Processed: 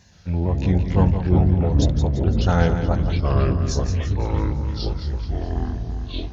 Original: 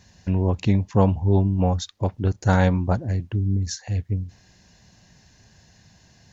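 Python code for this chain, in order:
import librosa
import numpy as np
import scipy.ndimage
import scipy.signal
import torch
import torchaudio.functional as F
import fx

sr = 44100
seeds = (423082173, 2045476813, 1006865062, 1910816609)

p1 = fx.pitch_ramps(x, sr, semitones=-2.0, every_ms=454)
p2 = p1 + fx.echo_feedback(p1, sr, ms=170, feedback_pct=50, wet_db=-9.0, dry=0)
y = fx.echo_pitch(p2, sr, ms=122, semitones=-4, count=3, db_per_echo=-3.0)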